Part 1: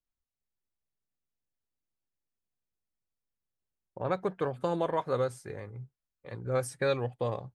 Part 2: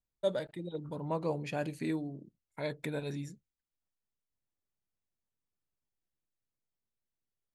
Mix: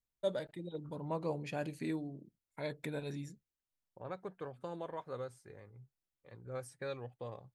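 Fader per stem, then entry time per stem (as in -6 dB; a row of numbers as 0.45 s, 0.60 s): -13.0 dB, -3.5 dB; 0.00 s, 0.00 s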